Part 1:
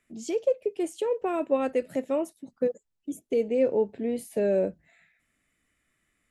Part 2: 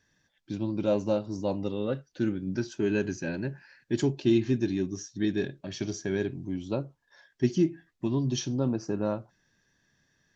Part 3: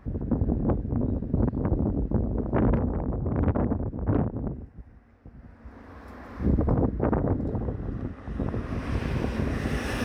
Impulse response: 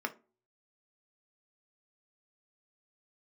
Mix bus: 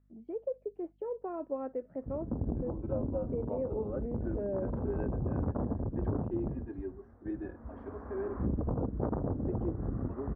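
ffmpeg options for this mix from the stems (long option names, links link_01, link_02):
-filter_complex "[0:a]aeval=exprs='val(0)+0.00141*(sin(2*PI*50*n/s)+sin(2*PI*2*50*n/s)/2+sin(2*PI*3*50*n/s)/3+sin(2*PI*4*50*n/s)/4+sin(2*PI*5*50*n/s)/5)':channel_layout=same,volume=-10dB,asplit=2[link_01][link_02];[1:a]highpass=frequency=340:width=0.5412,highpass=frequency=340:width=1.3066,asplit=2[link_03][link_04];[link_04]adelay=3.6,afreqshift=-0.92[link_05];[link_03][link_05]amix=inputs=2:normalize=1,adelay=2050,volume=-3dB[link_06];[2:a]adelay=2000,volume=-0.5dB[link_07];[link_02]apad=whole_len=531009[link_08];[link_07][link_08]sidechaincompress=threshold=-44dB:ratio=5:attack=6.7:release=446[link_09];[link_01][link_06][link_09]amix=inputs=3:normalize=0,lowpass=frequency=1300:width=0.5412,lowpass=frequency=1300:width=1.3066,acompressor=threshold=-29dB:ratio=6"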